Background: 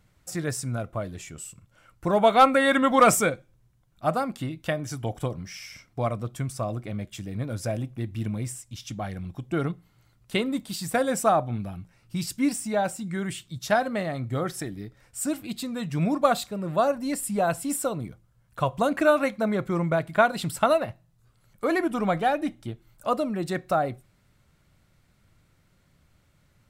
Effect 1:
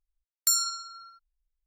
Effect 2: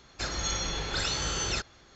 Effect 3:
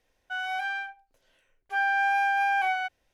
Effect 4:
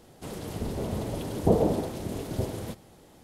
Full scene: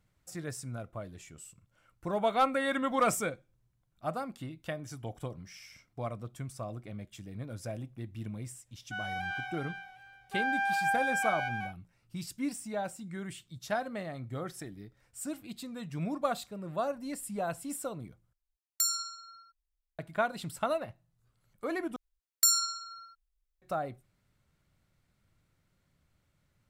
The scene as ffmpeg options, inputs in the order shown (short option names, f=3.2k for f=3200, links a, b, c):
-filter_complex "[1:a]asplit=2[a][b];[0:a]volume=-10dB[c];[3:a]aecho=1:1:379|758|1137:0.501|0.125|0.0313[d];[c]asplit=3[e][f][g];[e]atrim=end=18.334[h];[a]atrim=end=1.66,asetpts=PTS-STARTPTS,volume=-5.5dB[i];[f]atrim=start=19.986:end=21.964[j];[b]atrim=end=1.66,asetpts=PTS-STARTPTS,volume=-0.5dB[k];[g]atrim=start=23.616[l];[d]atrim=end=3.13,asetpts=PTS-STARTPTS,volume=-6dB,afade=t=in:d=0.1,afade=t=out:st=3.03:d=0.1,adelay=8610[m];[h][i]acrossfade=d=0.004:c1=hsin:c2=hsin[n];[n][j]acrossfade=d=0.004:c1=hsin:c2=hsin[o];[o][k]acrossfade=d=0.004:c1=hsin:c2=hsin[p];[p][l]acrossfade=d=0.004:c1=hsin:c2=hsin[q];[q][m]amix=inputs=2:normalize=0"